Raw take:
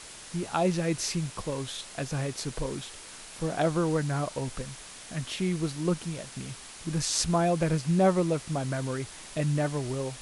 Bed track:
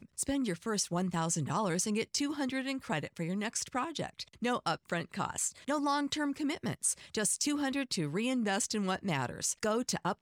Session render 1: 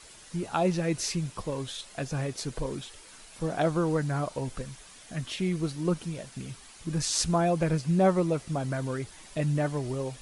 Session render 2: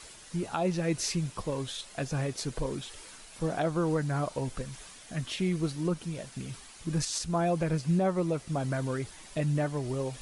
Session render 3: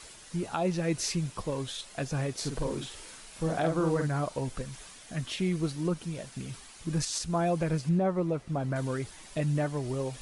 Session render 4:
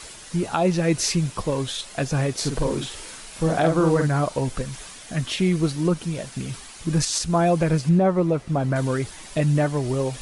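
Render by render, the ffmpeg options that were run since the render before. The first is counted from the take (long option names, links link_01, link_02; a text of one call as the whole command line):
ffmpeg -i in.wav -af "afftdn=noise_reduction=8:noise_floor=-46" out.wav
ffmpeg -i in.wav -af "alimiter=limit=-19dB:level=0:latency=1:release=329,areverse,acompressor=mode=upward:threshold=-41dB:ratio=2.5,areverse" out.wav
ffmpeg -i in.wav -filter_complex "[0:a]asettb=1/sr,asplit=3[link_01][link_02][link_03];[link_01]atrim=end=2.364[link_04];[link_02]atrim=start=2.36:end=4.08,asetpts=PTS-STARTPTS,afade=type=in:duration=0.004:curve=qsin,afade=type=out:start_time=1.716:duration=0.004:curve=qsin,asplit=2[link_05][link_06];[link_06]adelay=49,volume=-5dB[link_07];[link_05][link_07]amix=inputs=2:normalize=0,atrim=end_sample=75852[link_08];[link_03]atrim=start=4.076[link_09];[link_04][link_08]acrossfade=duration=0.004:curve1=hsin:curve2=qsin[link_10];[link_10][link_09]acrossfade=duration=0.004:curve1=qsin:curve2=hsin,asettb=1/sr,asplit=3[link_11][link_12][link_13];[link_11]atrim=end=7.894[link_14];[link_12]atrim=start=7.89:end=8.76,asetpts=PTS-STARTPTS,afade=type=in:duration=0.004:curve=qsin,afade=type=out:start_time=0.866:duration=0.004:curve=qsin,highshelf=frequency=3500:gain=-12[link_15];[link_13]atrim=start=8.756[link_16];[link_14][link_15]acrossfade=duration=0.004:curve1=hsin:curve2=qsin[link_17];[link_17][link_16]acrossfade=duration=0.004:curve1=qsin:curve2=hsin" out.wav
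ffmpeg -i in.wav -af "volume=8.5dB" out.wav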